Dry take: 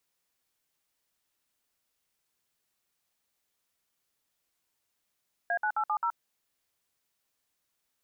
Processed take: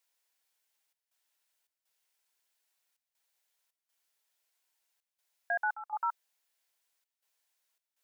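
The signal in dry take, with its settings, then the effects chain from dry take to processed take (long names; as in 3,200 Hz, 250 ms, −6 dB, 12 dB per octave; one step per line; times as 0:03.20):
touch tones "A9870", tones 74 ms, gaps 58 ms, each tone −28.5 dBFS
high-pass filter 600 Hz 12 dB per octave
notch filter 1,200 Hz, Q 7.8
gate pattern "xxxxx.xxx.x" 81 BPM −12 dB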